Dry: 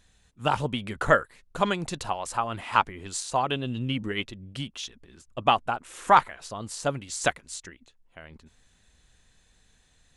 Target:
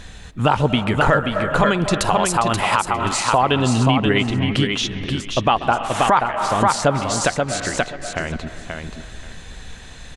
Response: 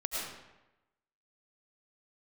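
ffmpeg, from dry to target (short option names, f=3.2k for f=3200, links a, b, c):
-filter_complex "[0:a]asettb=1/sr,asplit=3[a][b][c];[a]atrim=end=1.954[d];[b]atrim=start=1.95:end=2.97,asetpts=PTS-STARTPTS,afade=t=in:d=0.004:c=qsin,afade=t=out:st=1.016:d=0.004:c=qsin,aemphasis=mode=production:type=50fm[e];[c]atrim=start=2.966[f];[d][e]acrossfade=d=0.004:c1=hsin:c2=qsin[g];[g][f]acrossfade=d=0.004:c1=qsin:c2=hsin,asplit=2[h][i];[1:a]atrim=start_sample=2205,lowpass=3.2k,adelay=133[j];[i][j]afir=irnorm=-1:irlink=0,volume=-20.5dB[k];[h][k]amix=inputs=2:normalize=0,acompressor=threshold=-49dB:ratio=2,highshelf=f=6.2k:g=-11.5,aecho=1:1:531|1062|1593:0.531|0.0849|0.0136,alimiter=level_in=29dB:limit=-1dB:release=50:level=0:latency=1,volume=-4dB"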